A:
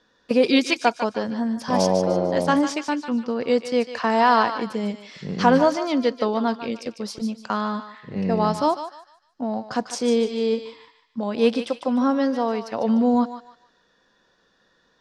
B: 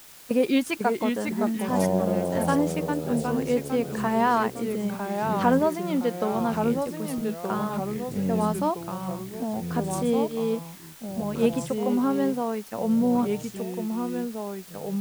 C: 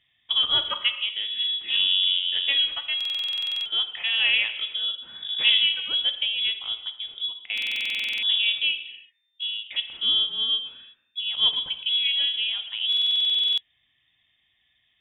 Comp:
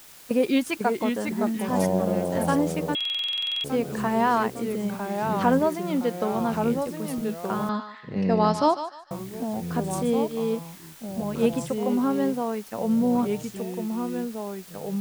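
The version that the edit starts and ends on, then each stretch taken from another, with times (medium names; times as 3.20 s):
B
2.95–3.64 s: from C
7.69–9.11 s: from A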